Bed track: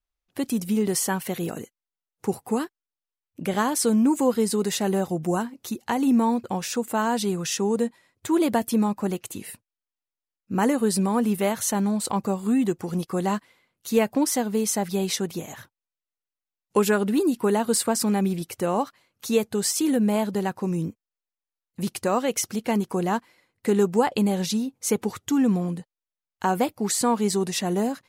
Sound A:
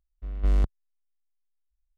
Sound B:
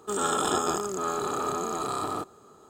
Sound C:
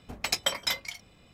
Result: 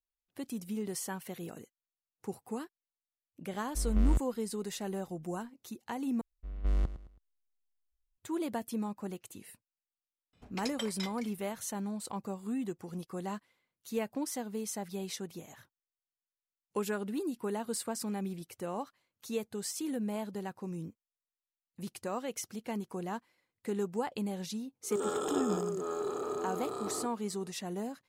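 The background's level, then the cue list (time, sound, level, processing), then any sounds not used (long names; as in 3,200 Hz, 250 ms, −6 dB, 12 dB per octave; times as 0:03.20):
bed track −13.5 dB
0:03.53: mix in A + brickwall limiter −21 dBFS
0:06.21: overwrite with A −7 dB + repeating echo 108 ms, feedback 33%, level −13.5 dB
0:10.33: mix in C −12.5 dB + Bessel low-pass filter 10,000 Hz
0:24.83: mix in B −13 dB + parametric band 420 Hz +11.5 dB 0.96 octaves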